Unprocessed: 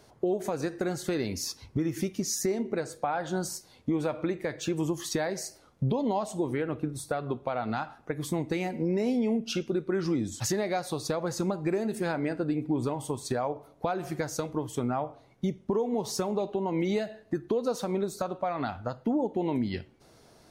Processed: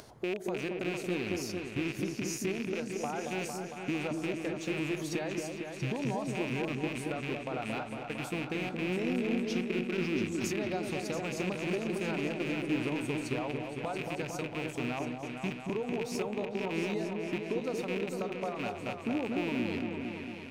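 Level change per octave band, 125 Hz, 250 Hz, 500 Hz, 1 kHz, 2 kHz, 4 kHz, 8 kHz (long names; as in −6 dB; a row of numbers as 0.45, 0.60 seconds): −4.5, −3.5, −4.5, −5.5, +3.0, −1.5, −7.5 decibels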